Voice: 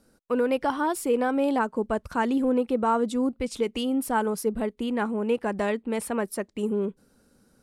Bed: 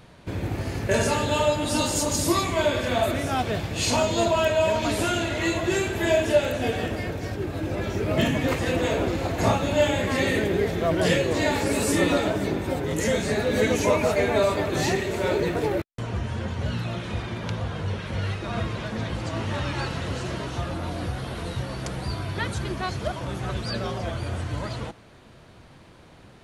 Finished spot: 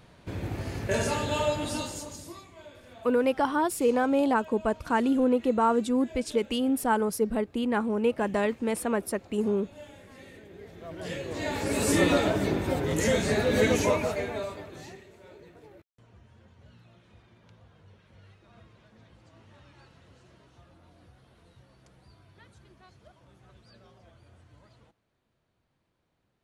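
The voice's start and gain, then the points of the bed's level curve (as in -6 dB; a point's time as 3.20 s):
2.75 s, 0.0 dB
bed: 1.63 s -5 dB
2.49 s -26 dB
10.44 s -26 dB
11.91 s -1 dB
13.76 s -1 dB
15.19 s -27 dB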